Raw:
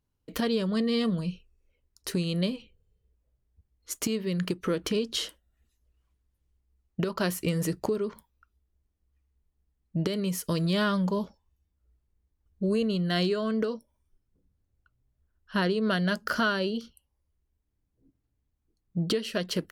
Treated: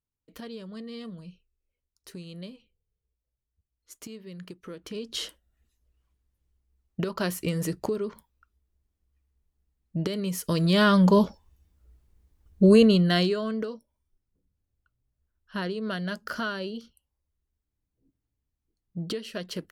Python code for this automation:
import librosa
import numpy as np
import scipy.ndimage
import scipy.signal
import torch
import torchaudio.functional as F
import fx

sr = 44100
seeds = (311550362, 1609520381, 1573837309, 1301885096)

y = fx.gain(x, sr, db=fx.line((4.8, -13.0), (5.24, -0.5), (10.31, -0.5), (11.19, 10.5), (12.83, 10.5), (13.25, 2.0), (13.75, -5.0)))